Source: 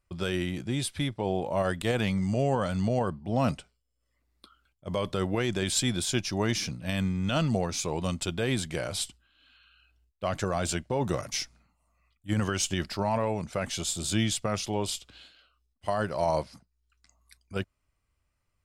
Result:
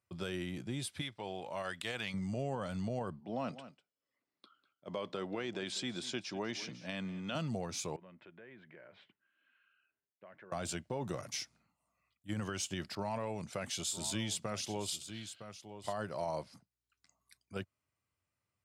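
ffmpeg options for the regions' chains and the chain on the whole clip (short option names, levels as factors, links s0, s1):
-filter_complex "[0:a]asettb=1/sr,asplit=3[s0][s1][s2];[s0]atrim=end=1.014[s3];[s1]atrim=start=1.01:end=2.14,asetpts=PTS-STARTPTS,afade=t=in:d=0.004:c=qsin,afade=t=out:st=1.126:d=0.004:c=qsin,lowpass=f=3000:p=1,tiltshelf=f=1100:g=-9.5[s4];[s2]atrim=start=2.136[s5];[s3][s4]acrossfade=d=0.004:c1=hsin:c2=qsin[s6];[s6][s5]acrossfade=d=0.004:c1=qsin:c2=hsin,asettb=1/sr,asplit=3[s7][s8][s9];[s7]atrim=end=3.204[s10];[s8]atrim=start=3.2:end=7.35,asetpts=PTS-STARTPTS,afade=t=in:d=0.004:c=qsin,afade=t=out:st=4.146:d=0.004:c=qsin,highpass=210,lowpass=5000,aecho=1:1:197:0.133,atrim=end_sample=183015[s11];[s9]atrim=start=7.346[s12];[s10][s11]acrossfade=d=0.004:c1=hsin:c2=qsin[s13];[s13][s12]acrossfade=d=0.004:c1=qsin:c2=hsin,asettb=1/sr,asplit=3[s14][s15][s16];[s14]atrim=end=7.964[s17];[s15]atrim=start=7.96:end=10.52,asetpts=PTS-STARTPTS,afade=t=in:d=0.004:c=qsin,afade=t=out:st=2.556:d=0.004:c=qsin,highpass=280,equalizer=f=280:t=q:w=4:g=-7,equalizer=f=480:t=q:w=4:g=-4,equalizer=f=760:t=q:w=4:g=-9,equalizer=f=1200:t=q:w=4:g=-7,equalizer=f=1800:t=q:w=4:g=3,lowpass=f=2100:w=0.5412,lowpass=f=2100:w=1.3066,acompressor=threshold=0.00282:ratio=2.5:attack=3.2:release=140:knee=1:detection=peak[s18];[s16]atrim=start=10.516[s19];[s17][s18]acrossfade=d=0.004:c1=hsin:c2=qsin[s20];[s20][s19]acrossfade=d=0.004:c1=qsin:c2=hsin,asettb=1/sr,asplit=3[s21][s22][s23];[s21]atrim=end=12.954[s24];[s22]atrim=start=12.95:end=15.93,asetpts=PTS-STARTPTS,afade=t=in:d=0.004:c=qsin,afade=t=out:st=2.976:d=0.004:c=qsin,aecho=1:1:960:0.211,atrim=end_sample=131418,adynamicequalizer=threshold=0.00562:dfrequency=2100:dqfactor=0.7:tfrequency=2100:tqfactor=0.7:attack=5:release=100:ratio=0.375:range=2:mode=boostabove:tftype=highshelf[s25];[s23]atrim=start=15.926[s26];[s24][s25]acrossfade=d=0.004:c1=hsin:c2=qsin[s27];[s27][s26]acrossfade=d=0.004:c1=qsin:c2=hsin,highpass=f=93:w=0.5412,highpass=f=93:w=1.3066,acompressor=threshold=0.0316:ratio=2,volume=0.473"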